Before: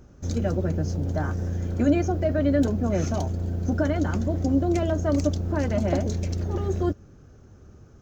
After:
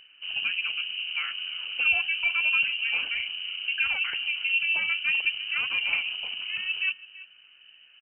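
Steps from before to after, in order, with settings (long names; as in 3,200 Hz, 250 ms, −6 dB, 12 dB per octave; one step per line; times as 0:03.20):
parametric band 91 Hz −10.5 dB 2.3 octaves
tape wow and flutter 110 cents
high-frequency loss of the air 160 metres
slap from a distant wall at 57 metres, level −18 dB
voice inversion scrambler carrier 3,000 Hz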